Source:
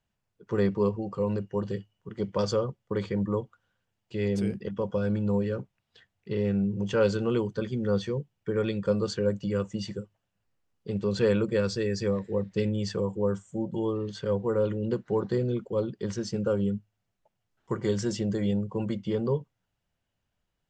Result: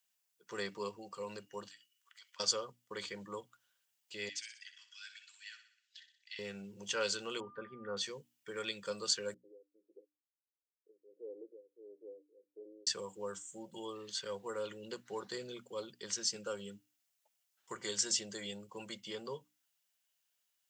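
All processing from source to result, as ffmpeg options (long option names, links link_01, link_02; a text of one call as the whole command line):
ffmpeg -i in.wav -filter_complex "[0:a]asettb=1/sr,asplit=3[link_01][link_02][link_03];[link_01]atrim=end=1.684[link_04];[link_02]atrim=start=1.68:end=2.4,asetpts=PTS-STARTPTS,afade=type=in:duration=0.004:curve=qsin,afade=type=out:start_time=0.716:duration=0.004:curve=qsin,highpass=frequency=1300:width=0.5412,highpass=frequency=1300:width=1.3066,acompressor=threshold=-57dB:ratio=2.5:attack=3.2:release=140:knee=1:detection=peak[link_05];[link_03]atrim=start=2.396[link_06];[link_04][link_05]acrossfade=duration=0.004:curve1=hsin:curve2=qsin[link_07];[link_07][link_06]acrossfade=duration=0.004:curve1=qsin:curve2=hsin,asettb=1/sr,asplit=3[link_08][link_09][link_10];[link_08]atrim=end=4.294[link_11];[link_09]atrim=start=4.29:end=6.39,asetpts=PTS-STARTPTS,afade=type=in:duration=0.004:curve=qsin,afade=type=out:start_time=2.096:duration=0.004:curve=qsin,asuperpass=centerf=3600:order=12:qfactor=0.61,aecho=1:1:62|124|186|248|310|372:0.299|0.152|0.0776|0.0396|0.0202|0.0103,atrim=end_sample=92610[link_12];[link_10]atrim=start=6.386[link_13];[link_11][link_12]acrossfade=duration=0.004:curve1=hsin:curve2=qsin[link_14];[link_14][link_13]acrossfade=duration=0.004:curve1=qsin:curve2=hsin,asettb=1/sr,asplit=3[link_15][link_16][link_17];[link_15]atrim=end=7.404[link_18];[link_16]atrim=start=7.4:end=7.97,asetpts=PTS-STARTPTS,afade=type=in:duration=0.004:curve=qsin,afade=type=out:start_time=0.566:duration=0.004:curve=qsin,lowpass=frequency=1700:width=0.5412,lowpass=frequency=1700:width=1.3066,aeval=exprs='val(0)+0.00355*sin(2*PI*1200*n/s)':channel_layout=same[link_19];[link_17]atrim=start=7.966[link_20];[link_18][link_19]acrossfade=duration=0.004:curve1=hsin:curve2=qsin[link_21];[link_21][link_20]acrossfade=duration=0.004:curve1=qsin:curve2=hsin,asettb=1/sr,asplit=3[link_22][link_23][link_24];[link_22]atrim=end=9.344[link_25];[link_23]atrim=start=9.34:end=12.87,asetpts=PTS-STARTPTS,afade=type=in:duration=0.004:curve=qsin,afade=type=out:start_time=3.526:duration=0.004:curve=qsin,tremolo=f=1.5:d=0.86,aeval=exprs='(tanh(17.8*val(0)+0.7)-tanh(0.7))/17.8':channel_layout=same,asuperpass=centerf=390:order=8:qfactor=1.6[link_26];[link_24]atrim=start=12.866[link_27];[link_25][link_26]acrossfade=duration=0.004:curve1=hsin:curve2=qsin[link_28];[link_28][link_27]acrossfade=duration=0.004:curve1=qsin:curve2=hsin,aderivative,bandreject=frequency=60:width_type=h:width=6,bandreject=frequency=120:width_type=h:width=6,bandreject=frequency=180:width_type=h:width=6,bandreject=frequency=240:width_type=h:width=6,bandreject=frequency=300:width_type=h:width=6,volume=9dB" out.wav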